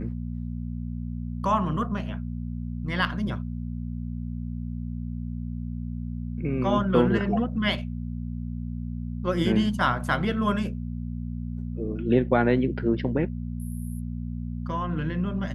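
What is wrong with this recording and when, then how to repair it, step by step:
hum 60 Hz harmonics 4 -32 dBFS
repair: de-hum 60 Hz, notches 4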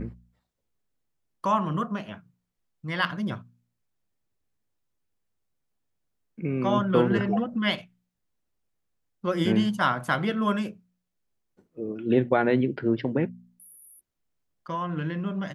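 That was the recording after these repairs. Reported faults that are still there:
nothing left

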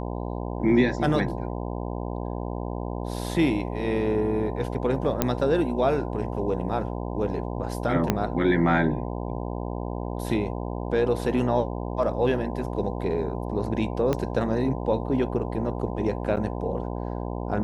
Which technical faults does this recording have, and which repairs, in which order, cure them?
buzz 60 Hz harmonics 17 -31 dBFS
5.22 s: pop -6 dBFS
8.10 s: pop -7 dBFS
14.13 s: pop -12 dBFS
16.36–16.37 s: dropout 8.1 ms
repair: de-click; de-hum 60 Hz, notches 17; interpolate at 16.36 s, 8.1 ms

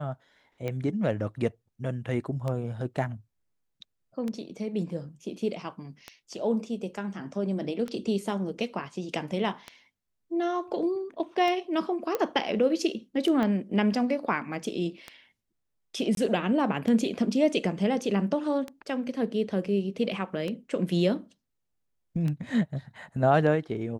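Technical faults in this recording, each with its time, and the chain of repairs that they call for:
tick 33 1/3 rpm -20 dBFS
12.15 s: pop -14 dBFS
13.43 s: pop -18 dBFS
16.15–16.17 s: dropout 22 ms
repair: de-click; interpolate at 16.15 s, 22 ms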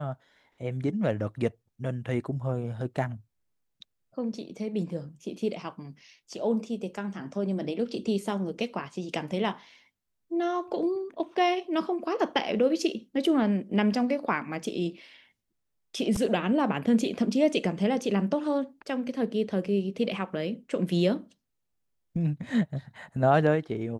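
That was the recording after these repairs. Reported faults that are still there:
12.15 s: pop
13.43 s: pop

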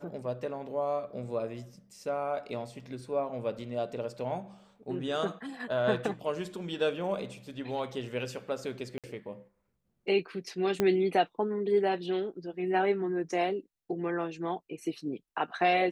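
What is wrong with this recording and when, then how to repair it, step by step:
8.98–9.04 s: dropout 57 ms
10.80 s: pop -13 dBFS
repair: de-click; interpolate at 8.98 s, 57 ms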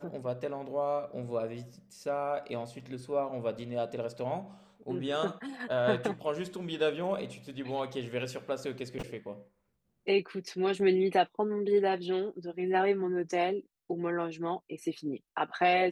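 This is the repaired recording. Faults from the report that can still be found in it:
10.80 s: pop

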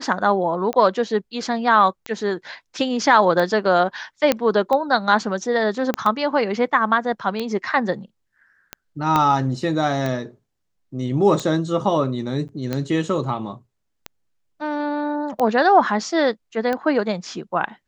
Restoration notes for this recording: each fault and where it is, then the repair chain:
tick 45 rpm -12 dBFS
4.32 s: pop -3 dBFS
5.94 s: pop -8 dBFS
9.16 s: pop -6 dBFS
12.48–12.49 s: dropout 9.2 ms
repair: de-click; interpolate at 12.48 s, 9.2 ms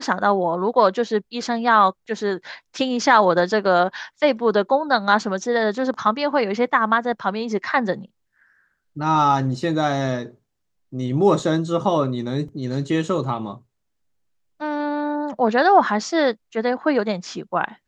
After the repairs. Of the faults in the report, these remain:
5.94 s: pop
9.16 s: pop

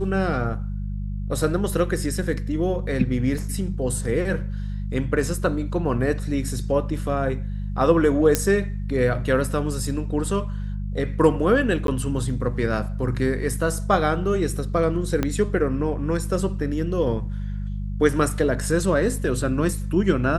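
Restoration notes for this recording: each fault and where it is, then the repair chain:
hum 50 Hz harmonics 4 -28 dBFS
3.38 s: dropout 3.2 ms
8.35 s: pop -3 dBFS
11.87–11.88 s: dropout 12 ms
15.23 s: pop -9 dBFS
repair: de-click; de-hum 50 Hz, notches 4; interpolate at 3.38 s, 3.2 ms; interpolate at 11.87 s, 12 ms

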